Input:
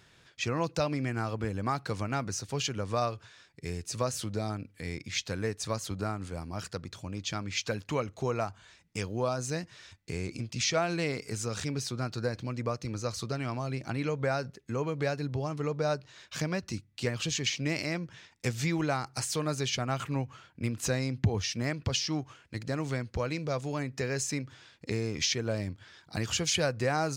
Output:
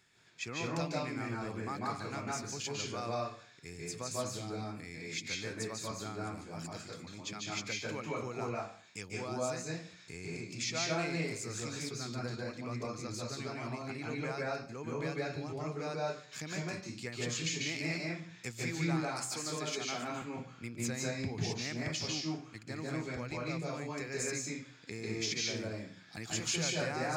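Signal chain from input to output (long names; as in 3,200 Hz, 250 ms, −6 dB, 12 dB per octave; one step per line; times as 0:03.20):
0:19.14–0:20.22: high-pass filter 160 Hz 24 dB per octave
convolution reverb RT60 0.45 s, pre-delay 142 ms, DRR −3 dB
level −8 dB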